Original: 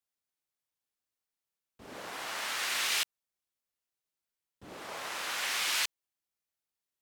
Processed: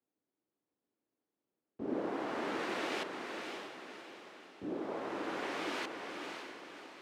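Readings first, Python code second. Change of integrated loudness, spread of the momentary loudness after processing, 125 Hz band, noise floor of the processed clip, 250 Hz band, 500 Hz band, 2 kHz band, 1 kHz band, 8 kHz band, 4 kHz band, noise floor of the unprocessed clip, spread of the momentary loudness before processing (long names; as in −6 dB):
−7.5 dB, 13 LU, +6.0 dB, below −85 dBFS, +15.5 dB, +9.5 dB, −6.0 dB, +0.5 dB, −18.5 dB, −12.0 dB, below −85 dBFS, 17 LU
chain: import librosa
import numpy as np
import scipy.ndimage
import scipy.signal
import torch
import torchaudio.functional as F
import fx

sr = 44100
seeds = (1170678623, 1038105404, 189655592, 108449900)

p1 = fx.rider(x, sr, range_db=10, speed_s=2.0)
p2 = x + (p1 * librosa.db_to_amplitude(-1.5))
p3 = fx.bandpass_q(p2, sr, hz=310.0, q=2.2)
p4 = fx.echo_diffused(p3, sr, ms=567, feedback_pct=46, wet_db=-5.0)
y = p4 * librosa.db_to_amplitude(10.0)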